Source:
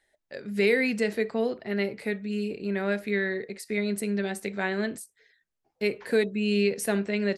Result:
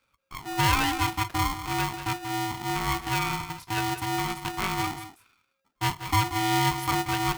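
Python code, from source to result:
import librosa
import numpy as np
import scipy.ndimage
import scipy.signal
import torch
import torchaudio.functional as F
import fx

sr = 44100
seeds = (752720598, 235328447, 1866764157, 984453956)

y = fx.peak_eq(x, sr, hz=8100.0, db=-13.0, octaves=0.94)
y = y + 10.0 ** (-11.5 / 20.0) * np.pad(y, (int(182 * sr / 1000.0), 0))[:len(y)]
y = y * np.sign(np.sin(2.0 * np.pi * 540.0 * np.arange(len(y)) / sr))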